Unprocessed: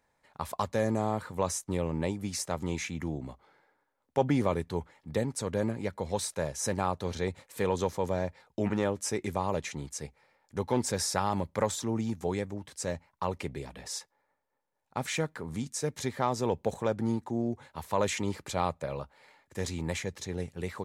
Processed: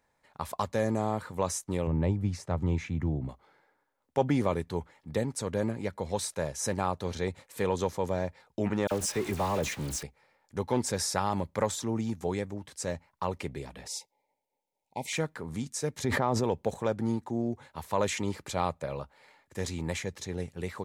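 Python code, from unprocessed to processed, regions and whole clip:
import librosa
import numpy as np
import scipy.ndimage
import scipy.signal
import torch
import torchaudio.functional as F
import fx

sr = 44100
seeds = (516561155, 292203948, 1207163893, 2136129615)

y = fx.chain(x, sr, fx.lowpass(hz=1600.0, slope=6),
    fx.peak_eq(hz=98.0, db=11.0, octaves=1.3), at=(1.87, 3.29))
y = fx.chain(y, sr, fx.zero_step(step_db=-35.0),
    fx.dispersion(late='lows', ms=43.0, hz=2200.0), at=(8.87, 10.03))
y = fx.chain(y, sr, fx.ellip_bandstop(low_hz=930.0, high_hz=2100.0, order=3, stop_db=40),
    fx.low_shelf(hz=180.0, db=-8.5), at=(13.87, 15.13))
y = fx.chain(y, sr, fx.high_shelf(hz=2300.0, db=-11.5),
    fx.env_flatten(amount_pct=100), at=(16.04, 16.44))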